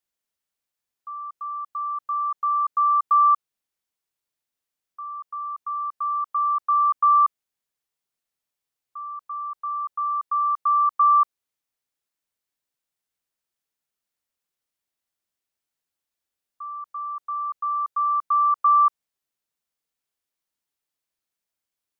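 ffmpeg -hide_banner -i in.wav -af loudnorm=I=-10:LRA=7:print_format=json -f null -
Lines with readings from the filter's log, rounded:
"input_i" : "-22.1",
"input_tp" : "-12.7",
"input_lra" : "3.1",
"input_thresh" : "-32.9",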